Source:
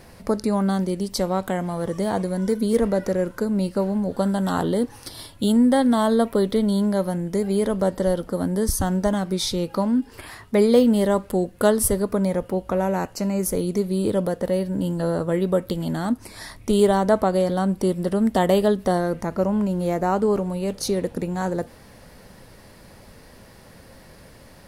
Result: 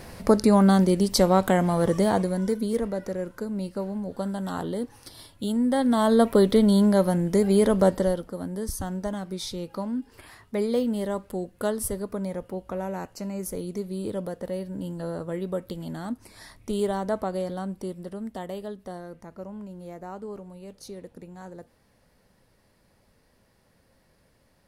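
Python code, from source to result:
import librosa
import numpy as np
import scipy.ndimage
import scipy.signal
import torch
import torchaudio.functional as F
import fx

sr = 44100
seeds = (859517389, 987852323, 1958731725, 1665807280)

y = fx.gain(x, sr, db=fx.line((1.9, 4.0), (2.88, -8.0), (5.55, -8.0), (6.3, 2.0), (7.9, 2.0), (8.32, -9.0), (17.45, -9.0), (18.52, -17.0)))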